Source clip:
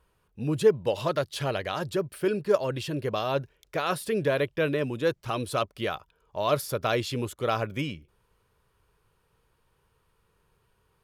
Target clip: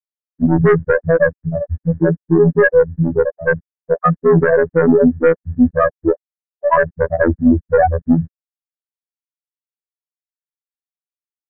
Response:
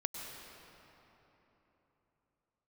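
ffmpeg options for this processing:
-af "aemphasis=mode=reproduction:type=bsi,bandreject=frequency=50:width_type=h:width=6,bandreject=frequency=100:width_type=h:width=6,bandreject=frequency=150:width_type=h:width=6,afftfilt=real='re*gte(hypot(re,im),0.398)':imag='im*gte(hypot(re,im),0.398)':win_size=1024:overlap=0.75,aecho=1:1:3.9:0.6,aeval=exprs='(tanh(8.91*val(0)+0.15)-tanh(0.15))/8.91':channel_layout=same,afftfilt=real='hypot(re,im)*cos(PI*b)':imag='0':win_size=2048:overlap=0.75,lowpass=frequency=1800:width_type=q:width=9.4,asetrate=42336,aresample=44100,alimiter=level_in=23dB:limit=-1dB:release=50:level=0:latency=1,volume=-1dB"

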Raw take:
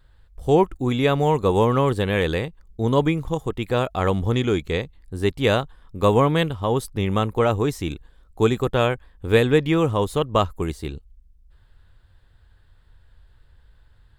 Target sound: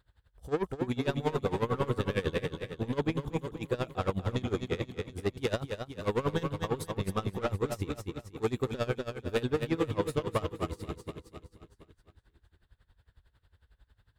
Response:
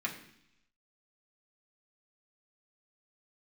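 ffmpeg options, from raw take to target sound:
-filter_complex "[0:a]highpass=47,asoftclip=type=tanh:threshold=-17.5dB,asplit=2[link_01][link_02];[link_02]aecho=0:1:242|484|726|968|1210|1452|1694:0.501|0.276|0.152|0.0834|0.0459|0.0252|0.0139[link_03];[link_01][link_03]amix=inputs=2:normalize=0,aeval=exprs='val(0)*pow(10,-20*(0.5-0.5*cos(2*PI*11*n/s))/20)':channel_layout=same,volume=-3.5dB"

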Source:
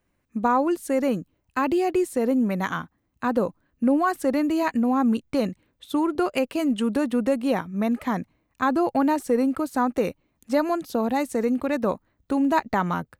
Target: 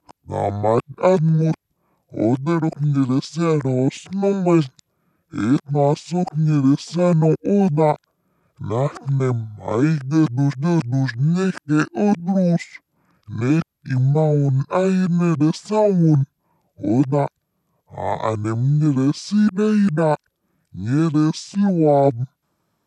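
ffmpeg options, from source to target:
ffmpeg -i in.wav -af "areverse,highpass=220,asetrate=25442,aresample=44100,volume=6dB" out.wav

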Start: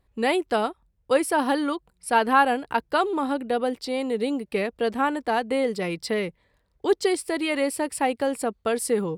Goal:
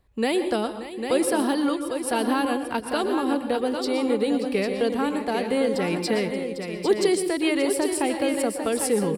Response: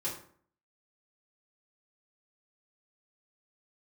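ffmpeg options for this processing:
-filter_complex "[0:a]acrossover=split=450|3000[link_01][link_02][link_03];[link_02]acompressor=threshold=-31dB:ratio=6[link_04];[link_01][link_04][link_03]amix=inputs=3:normalize=0,aecho=1:1:580|800:0.211|0.447,asplit=2[link_05][link_06];[1:a]atrim=start_sample=2205,afade=type=out:start_time=0.18:duration=0.01,atrim=end_sample=8379,adelay=115[link_07];[link_06][link_07]afir=irnorm=-1:irlink=0,volume=-12dB[link_08];[link_05][link_08]amix=inputs=2:normalize=0,volume=2.5dB"

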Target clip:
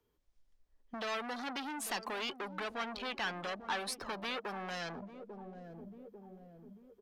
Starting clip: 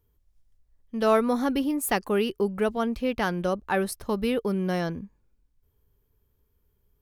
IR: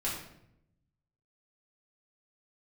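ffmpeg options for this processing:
-filter_complex "[0:a]acrossover=split=130|3000[link_01][link_02][link_03];[link_02]acompressor=threshold=-32dB:ratio=4[link_04];[link_01][link_04][link_03]amix=inputs=3:normalize=0,aeval=exprs='(tanh(126*val(0)+0.15)-tanh(0.15))/126':channel_layout=same,acrossover=split=200 7300:gain=0.158 1 0.224[link_05][link_06][link_07];[link_05][link_06][link_07]amix=inputs=3:normalize=0,asplit=2[link_08][link_09];[link_09]adelay=844,lowpass=frequency=1600:poles=1,volume=-12.5dB,asplit=2[link_10][link_11];[link_11]adelay=844,lowpass=frequency=1600:poles=1,volume=0.53,asplit=2[link_12][link_13];[link_13]adelay=844,lowpass=frequency=1600:poles=1,volume=0.53,asplit=2[link_14][link_15];[link_15]adelay=844,lowpass=frequency=1600:poles=1,volume=0.53,asplit=2[link_16][link_17];[link_17]adelay=844,lowpass=frequency=1600:poles=1,volume=0.53[link_18];[link_10][link_12][link_14][link_16][link_18]amix=inputs=5:normalize=0[link_19];[link_08][link_19]amix=inputs=2:normalize=0,afftdn=noise_reduction=12:noise_floor=-58,acrossover=split=760|1900[link_20][link_21][link_22];[link_20]acompressor=threshold=-58dB:ratio=6[link_23];[link_23][link_21][link_22]amix=inputs=3:normalize=0,volume=12.5dB"

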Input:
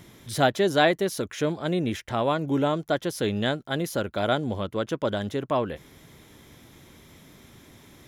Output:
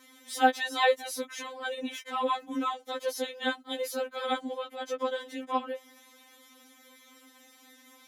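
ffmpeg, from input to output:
ffmpeg -i in.wav -af "highpass=390,afftfilt=real='re*3.46*eq(mod(b,12),0)':imag='im*3.46*eq(mod(b,12),0)':win_size=2048:overlap=0.75" out.wav

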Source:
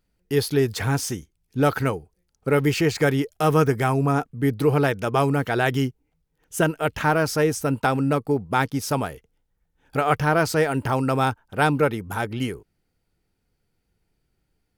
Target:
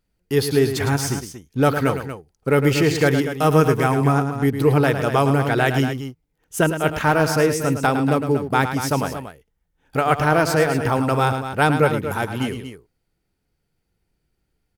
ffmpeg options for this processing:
ffmpeg -i in.wav -filter_complex "[0:a]aecho=1:1:107.9|236.2:0.355|0.316,asplit=2[link_01][link_02];[link_02]aeval=exprs='sgn(val(0))*max(abs(val(0))-0.0112,0)':channel_layout=same,volume=-6dB[link_03];[link_01][link_03]amix=inputs=2:normalize=0,volume=-1dB" out.wav

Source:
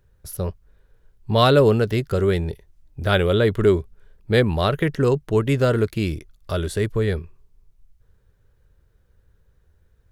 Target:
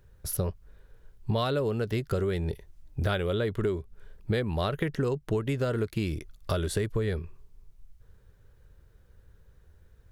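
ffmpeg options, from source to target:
ffmpeg -i in.wav -af "acompressor=threshold=-27dB:ratio=12,volume=2.5dB" out.wav

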